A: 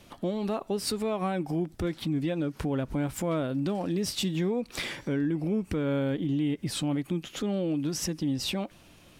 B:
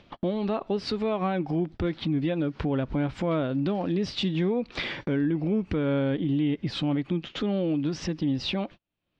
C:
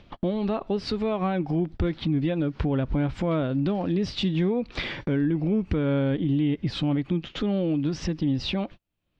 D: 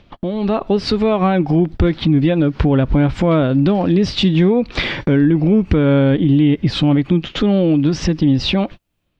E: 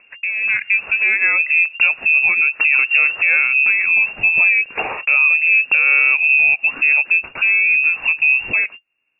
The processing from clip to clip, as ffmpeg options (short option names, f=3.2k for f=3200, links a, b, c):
-af "agate=range=-43dB:threshold=-42dB:ratio=16:detection=peak,lowpass=f=4.3k:w=0.5412,lowpass=f=4.3k:w=1.3066,acompressor=mode=upward:threshold=-31dB:ratio=2.5,volume=2.5dB"
-af "lowshelf=f=96:g=11"
-af "dynaudnorm=f=290:g=3:m=8dB,volume=3dB"
-af "lowpass=f=2.4k:t=q:w=0.5098,lowpass=f=2.4k:t=q:w=0.6013,lowpass=f=2.4k:t=q:w=0.9,lowpass=f=2.4k:t=q:w=2.563,afreqshift=-2800,volume=-1dB"